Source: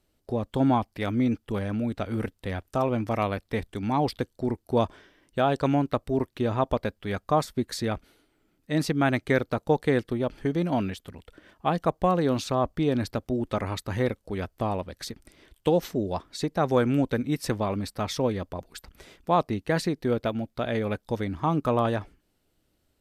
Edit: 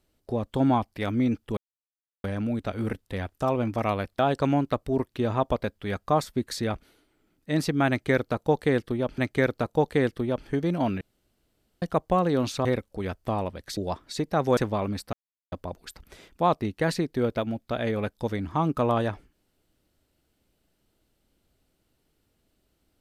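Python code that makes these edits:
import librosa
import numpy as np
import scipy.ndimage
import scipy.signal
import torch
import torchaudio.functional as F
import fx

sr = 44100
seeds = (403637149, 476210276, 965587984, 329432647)

y = fx.edit(x, sr, fx.insert_silence(at_s=1.57, length_s=0.67),
    fx.cut(start_s=3.52, length_s=1.88),
    fx.repeat(start_s=9.1, length_s=1.29, count=2),
    fx.room_tone_fill(start_s=10.93, length_s=0.81),
    fx.cut(start_s=12.57, length_s=1.41),
    fx.cut(start_s=15.1, length_s=0.91),
    fx.cut(start_s=16.81, length_s=0.64),
    fx.silence(start_s=18.01, length_s=0.39), tone=tone)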